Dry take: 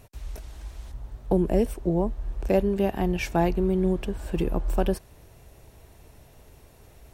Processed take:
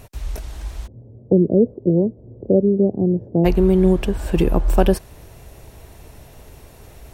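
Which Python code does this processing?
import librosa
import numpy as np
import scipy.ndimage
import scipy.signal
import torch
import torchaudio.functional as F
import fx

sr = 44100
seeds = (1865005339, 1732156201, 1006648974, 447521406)

y = fx.ellip_bandpass(x, sr, low_hz=100.0, high_hz=510.0, order=3, stop_db=60, at=(0.86, 3.44), fade=0.02)
y = y * librosa.db_to_amplitude(9.0)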